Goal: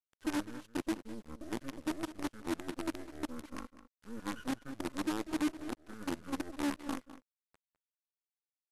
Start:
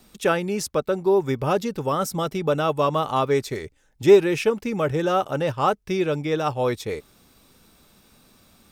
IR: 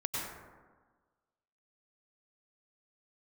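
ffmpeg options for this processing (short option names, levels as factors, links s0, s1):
-filter_complex "[0:a]highshelf=f=6800:g=2.5,areverse,acompressor=threshold=0.0316:ratio=12,areverse,asplit=3[s0][s1][s2];[s0]bandpass=f=530:t=q:w=8,volume=1[s3];[s1]bandpass=f=1840:t=q:w=8,volume=0.501[s4];[s2]bandpass=f=2480:t=q:w=8,volume=0.355[s5];[s3][s4][s5]amix=inputs=3:normalize=0,acrusher=bits=7:dc=4:mix=0:aa=0.000001,asetrate=25476,aresample=44100,atempo=1.73107,asplit=2[s6][s7];[s7]adelay=204.1,volume=0.2,highshelf=f=4000:g=-4.59[s8];[s6][s8]amix=inputs=2:normalize=0,volume=1.58"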